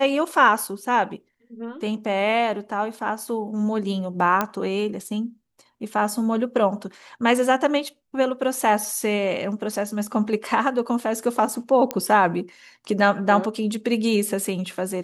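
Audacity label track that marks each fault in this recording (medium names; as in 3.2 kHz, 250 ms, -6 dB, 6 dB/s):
4.410000	4.410000	pop -8 dBFS
11.910000	11.910000	pop -8 dBFS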